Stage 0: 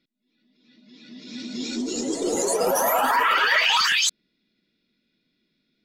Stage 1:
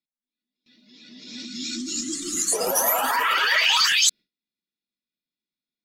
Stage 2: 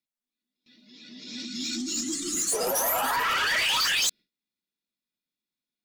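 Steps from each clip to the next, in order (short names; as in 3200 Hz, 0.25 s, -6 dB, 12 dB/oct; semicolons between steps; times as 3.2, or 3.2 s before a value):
high shelf 2500 Hz +10 dB; gate with hold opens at -47 dBFS; spectral delete 1.46–2.52, 360–1100 Hz; gain -4.5 dB
soft clip -21.5 dBFS, distortion -10 dB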